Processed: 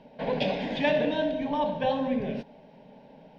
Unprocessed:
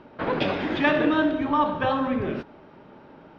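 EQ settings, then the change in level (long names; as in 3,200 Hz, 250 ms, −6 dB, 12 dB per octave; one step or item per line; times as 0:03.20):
phaser with its sweep stopped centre 340 Hz, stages 6
0.0 dB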